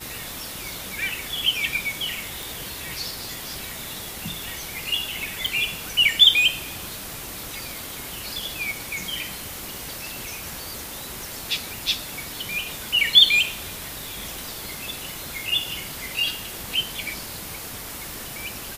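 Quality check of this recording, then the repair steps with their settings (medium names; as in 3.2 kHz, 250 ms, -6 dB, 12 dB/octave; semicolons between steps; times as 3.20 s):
2.43 s: pop
5.46 s: pop
8.38 s: pop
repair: de-click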